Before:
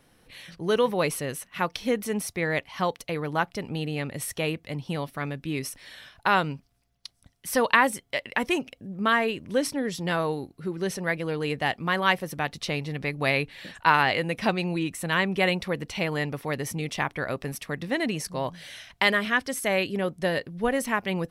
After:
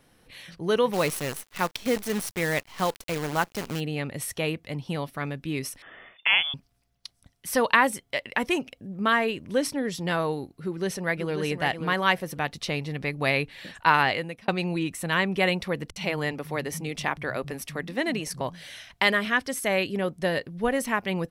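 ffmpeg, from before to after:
-filter_complex "[0:a]asplit=3[a][b][c];[a]afade=t=out:st=0.92:d=0.02[d];[b]acrusher=bits=6:dc=4:mix=0:aa=0.000001,afade=t=in:st=0.92:d=0.02,afade=t=out:st=3.79:d=0.02[e];[c]afade=t=in:st=3.79:d=0.02[f];[d][e][f]amix=inputs=3:normalize=0,asettb=1/sr,asplit=3[g][h][i];[g]atrim=end=5.824[j];[h]atrim=start=5.82:end=6.54,asetpts=PTS-STARTPTS,afade=t=in:d=0.004:c=qsin,afade=t=out:st=0.716:d=0.004:c=qsin,lowpass=f=3.1k:t=q:w=0.5098,lowpass=f=3.1k:t=q:w=0.6013,lowpass=f=3.1k:t=q:w=0.9,lowpass=f=3.1k:t=q:w=2.563,afreqshift=-3600[k];[i]atrim=start=6.536[l];[j][k]acrossfade=d=0.004:c1=hsin:c2=qsin[m];[m][l]acrossfade=d=0.004:c1=qsin:c2=hsin,asplit=2[n][o];[o]afade=t=in:st=10.63:d=0.01,afade=t=out:st=11.39:d=0.01,aecho=0:1:540|1080:0.421697|0.0421697[p];[n][p]amix=inputs=2:normalize=0,asettb=1/sr,asplit=3[q][r][s];[q]atrim=end=15.904[t];[r]atrim=start=15.9:end=18.41,asetpts=PTS-STARTPTS,afade=t=in:d=0.004:c=qsin,afade=t=out:st=2.506:d=0.004:c=qsin,acrossover=split=160[u][v];[v]adelay=60[w];[u][w]amix=inputs=2:normalize=0,atrim=end_sample=110691[x];[s]atrim=start=18.406[y];[t][x]acrossfade=d=0.004:c1=hsin:c2=qsin[z];[z][y]acrossfade=d=0.004:c1=qsin:c2=hsin,asplit=2[aa][ab];[aa]atrim=end=14.48,asetpts=PTS-STARTPTS,afade=t=out:st=14.06:d=0.42[ac];[ab]atrim=start=14.48,asetpts=PTS-STARTPTS,afade=t=in:d=0.004:c=hsin[ad];[ac][ad]concat=n=2:v=0:a=1"

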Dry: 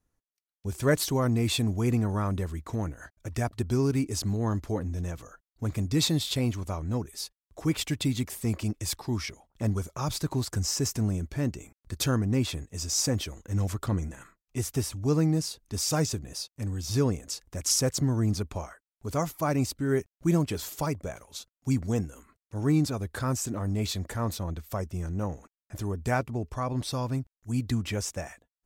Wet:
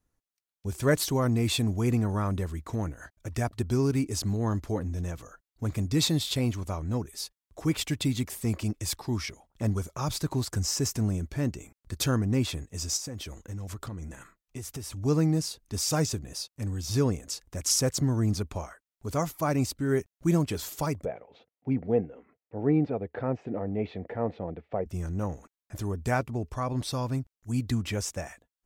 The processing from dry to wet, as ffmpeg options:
-filter_complex "[0:a]asplit=3[a][b][c];[a]afade=t=out:st=12.96:d=0.02[d];[b]acompressor=threshold=-34dB:ratio=6:attack=3.2:release=140:knee=1:detection=peak,afade=t=in:st=12.96:d=0.02,afade=t=out:st=14.96:d=0.02[e];[c]afade=t=in:st=14.96:d=0.02[f];[d][e][f]amix=inputs=3:normalize=0,asettb=1/sr,asplit=3[g][h][i];[g]atrim=end=21.054[j];[h]atrim=start=21.05:end=24.86,asetpts=PTS-STARTPTS,afade=t=in:d=0.004:c=qsin,afade=t=out:st=3.806:d=0.004:c=qsin,highpass=150,equalizer=f=470:t=q:w=4:g=9,equalizer=f=740:t=q:w=4:g=6,equalizer=f=1.1k:t=q:w=4:g=-9,equalizer=f=1.5k:t=q:w=4:g=-7,lowpass=f=2.3k:w=0.5412,lowpass=f=2.3k:w=1.3066[k];[i]atrim=start=24.856[l];[j][k]acrossfade=d=0.004:c1=hsin:c2=qsin[m];[m][l]acrossfade=d=0.004:c1=qsin:c2=hsin"

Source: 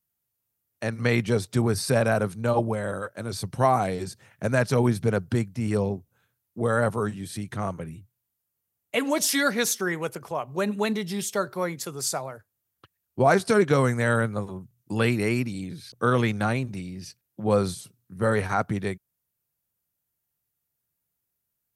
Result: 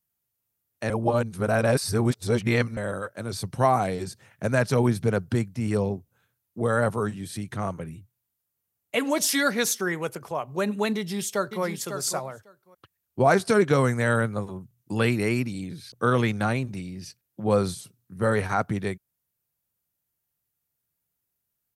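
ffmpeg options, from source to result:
-filter_complex "[0:a]asplit=2[a][b];[b]afade=t=in:st=10.96:d=0.01,afade=t=out:st=11.64:d=0.01,aecho=0:1:550|1100:0.398107|0.0398107[c];[a][c]amix=inputs=2:normalize=0,asplit=3[d][e][f];[d]atrim=end=0.902[g];[e]atrim=start=0.898:end=2.772,asetpts=PTS-STARTPTS,areverse[h];[f]atrim=start=2.768[i];[g][h]acrossfade=d=0.004:c1=hsin:c2=hsin[j];[j][i]acrossfade=d=0.004:c1=hsin:c2=hsin"

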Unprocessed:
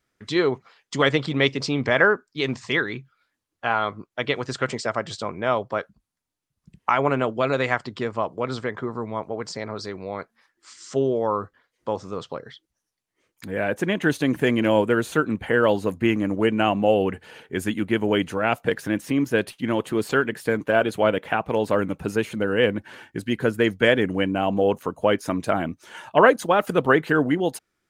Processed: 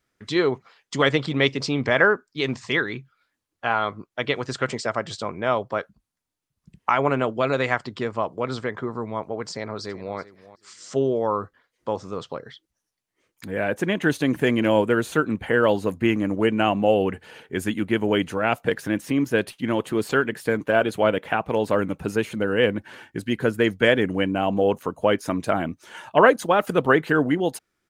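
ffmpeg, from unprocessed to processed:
-filter_complex "[0:a]asplit=2[a][b];[b]afade=t=in:st=9.51:d=0.01,afade=t=out:st=10.17:d=0.01,aecho=0:1:380|760:0.141254|0.0211881[c];[a][c]amix=inputs=2:normalize=0"

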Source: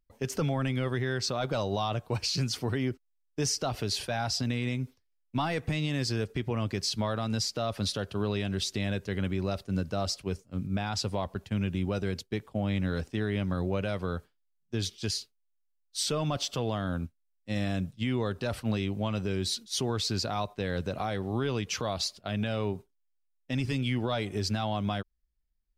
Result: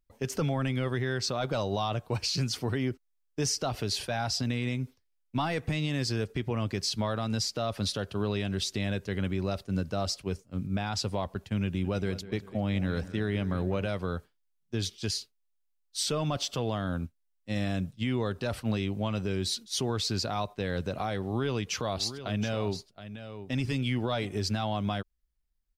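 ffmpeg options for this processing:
-filter_complex "[0:a]asettb=1/sr,asplit=3[a][b][c];[a]atrim=end=11.644[d];[b]atrim=start=11.64:end=13.87,asetpts=PTS-STARTPTS,afade=t=in:d=0.004:c=qsin,afade=t=out:st=2.226:d=0.004:c=qsin,asplit=2[e][f];[f]adelay=200,lowpass=f=3.1k:p=1,volume=-15dB,asplit=2[g][h];[h]adelay=200,lowpass=f=3.1k:p=1,volume=0.52,asplit=2[i][j];[j]adelay=200,lowpass=f=3.1k:p=1,volume=0.52,asplit=2[k][l];[l]adelay=200,lowpass=f=3.1k:p=1,volume=0.52,asplit=2[m][n];[n]adelay=200,lowpass=f=3.1k:p=1,volume=0.52[o];[e][g][i][k][m][o]amix=inputs=6:normalize=0,atrim=end_sample=98343[p];[c]atrim=start=13.866[q];[d][p]acrossfade=d=0.004:c1=hsin:c2=qsin[r];[r][q]acrossfade=d=0.004:c1=qsin:c2=hsin,asplit=3[s][t][u];[s]afade=t=out:st=21.91:d=0.02[v];[t]aecho=1:1:721:0.266,afade=t=in:st=21.91:d=0.02,afade=t=out:st=24.25:d=0.02[w];[u]afade=t=in:st=24.25:d=0.02[x];[v][w][x]amix=inputs=3:normalize=0"

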